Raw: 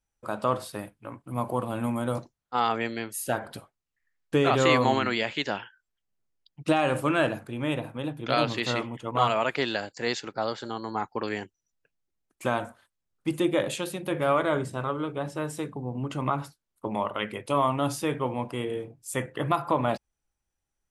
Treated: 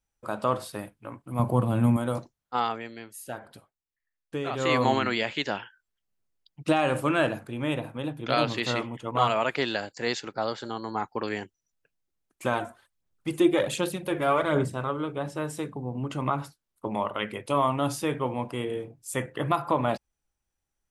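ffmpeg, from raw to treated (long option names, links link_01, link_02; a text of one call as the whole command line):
ffmpeg -i in.wav -filter_complex "[0:a]asettb=1/sr,asplit=3[link_01][link_02][link_03];[link_01]atrim=end=1.394[link_04];[link_02]atrim=start=1.39:end=1.97,asetpts=PTS-STARTPTS,afade=type=in:duration=0.004:curve=qsin,afade=type=out:start_time=0.576:duration=0.004:curve=qsin,equalizer=frequency=120:width=0.61:gain=11.5[link_05];[link_03]atrim=start=1.966[link_06];[link_04][link_05]acrossfade=duration=0.004:curve1=hsin:curve2=qsin[link_07];[link_07][link_06]acrossfade=duration=0.004:curve1=qsin:curve2=hsin,asplit=3[link_08][link_09][link_10];[link_08]afade=type=out:start_time=12.52:duration=0.02[link_11];[link_09]aphaser=in_gain=1:out_gain=1:delay=3:decay=0.45:speed=1.3:type=sinusoidal,afade=type=in:start_time=12.52:duration=0.02,afade=type=out:start_time=14.72:duration=0.02[link_12];[link_10]afade=type=in:start_time=14.72:duration=0.02[link_13];[link_11][link_12][link_13]amix=inputs=3:normalize=0,asplit=3[link_14][link_15][link_16];[link_14]atrim=end=2.82,asetpts=PTS-STARTPTS,afade=type=out:start_time=2.54:duration=0.28:silence=0.354813[link_17];[link_15]atrim=start=2.82:end=4.56,asetpts=PTS-STARTPTS,volume=-9dB[link_18];[link_16]atrim=start=4.56,asetpts=PTS-STARTPTS,afade=type=in:duration=0.28:silence=0.354813[link_19];[link_17][link_18][link_19]concat=n=3:v=0:a=1" out.wav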